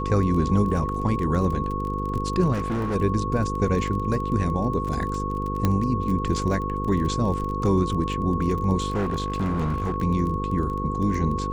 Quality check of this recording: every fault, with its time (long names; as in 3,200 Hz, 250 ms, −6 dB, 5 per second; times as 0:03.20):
mains buzz 50 Hz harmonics 10 −29 dBFS
surface crackle 21 per second −29 dBFS
whistle 1,100 Hz −29 dBFS
0:02.52–0:02.96: clipping −22.5 dBFS
0:05.65: click −9 dBFS
0:08.90–0:09.96: clipping −21 dBFS